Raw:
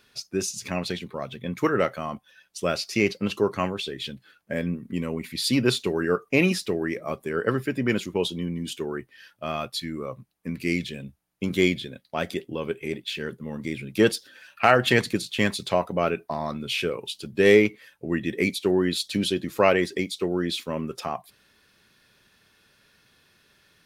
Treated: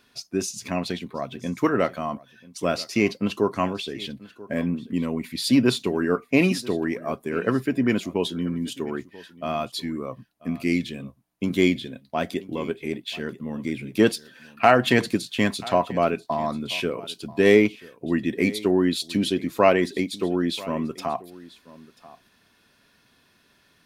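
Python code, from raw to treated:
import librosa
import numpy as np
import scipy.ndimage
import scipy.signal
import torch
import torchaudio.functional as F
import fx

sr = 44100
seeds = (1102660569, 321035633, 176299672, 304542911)

p1 = fx.small_body(x, sr, hz=(260.0, 690.0, 990.0), ring_ms=30, db=7)
p2 = p1 + fx.echo_single(p1, sr, ms=987, db=-20.0, dry=0)
y = p2 * 10.0 ** (-1.0 / 20.0)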